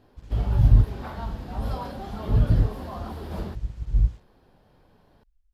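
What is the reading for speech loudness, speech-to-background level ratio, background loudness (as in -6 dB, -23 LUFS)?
-24.5 LUFS, 11.5 dB, -36.0 LUFS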